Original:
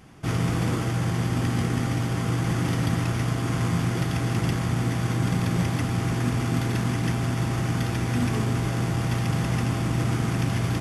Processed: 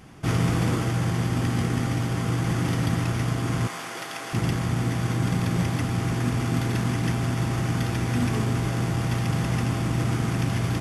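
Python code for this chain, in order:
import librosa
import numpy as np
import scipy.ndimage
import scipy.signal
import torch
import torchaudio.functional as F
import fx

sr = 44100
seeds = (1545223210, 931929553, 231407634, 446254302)

y = fx.rider(x, sr, range_db=10, speed_s=2.0)
y = fx.highpass(y, sr, hz=580.0, slope=12, at=(3.67, 4.33))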